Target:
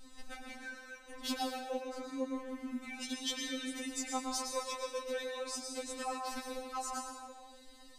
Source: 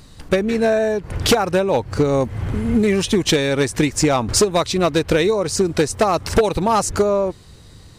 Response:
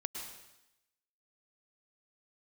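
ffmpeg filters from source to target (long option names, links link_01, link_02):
-filter_complex "[0:a]asettb=1/sr,asplit=3[link_01][link_02][link_03];[link_01]atrim=end=4.644[link_04];[link_02]atrim=start=4.64:end=5.11,asetpts=PTS-STARTPTS,afade=type=in:duration=0.004:curve=qsin,afade=type=out:start_time=0.466:duration=0.004:curve=qsin,aecho=1:1:5.7:0.7,atrim=end_sample=20727[link_05];[link_03]atrim=start=5.106[link_06];[link_04][link_05]acrossfade=duration=0.004:curve1=hsin:curve2=qsin[link_07];[link_07][link_06]acrossfade=duration=0.004:curve1=qsin:curve2=hsin,acompressor=threshold=-32dB:ratio=2[link_08];[1:a]atrim=start_sample=2205[link_09];[link_08][link_09]afir=irnorm=-1:irlink=0,afftfilt=real='re*3.46*eq(mod(b,12),0)':imag='im*3.46*eq(mod(b,12),0)':win_size=2048:overlap=0.75,volume=-6.5dB"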